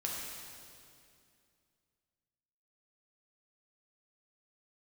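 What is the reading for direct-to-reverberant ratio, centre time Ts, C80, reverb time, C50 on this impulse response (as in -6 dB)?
-3.5 dB, 117 ms, 1.0 dB, 2.4 s, -0.5 dB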